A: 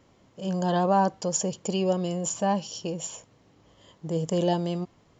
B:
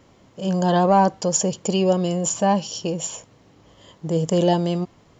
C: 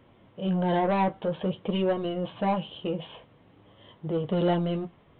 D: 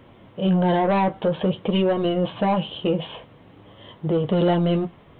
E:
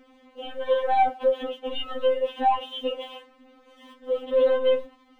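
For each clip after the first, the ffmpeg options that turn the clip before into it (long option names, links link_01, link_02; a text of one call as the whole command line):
ffmpeg -i in.wav -af "acontrast=65" out.wav
ffmpeg -i in.wav -af "aresample=8000,asoftclip=type=tanh:threshold=-15dB,aresample=44100,flanger=delay=8.3:depth=6.3:regen=-43:speed=0.5:shape=sinusoidal" out.wav
ffmpeg -i in.wav -af "alimiter=limit=-21.5dB:level=0:latency=1:release=105,volume=8.5dB" out.wav
ffmpeg -i in.wav -af "aeval=exprs='sgn(val(0))*max(abs(val(0))-0.0015,0)':channel_layout=same,afftfilt=real='re*3.46*eq(mod(b,12),0)':imag='im*3.46*eq(mod(b,12),0)':win_size=2048:overlap=0.75" out.wav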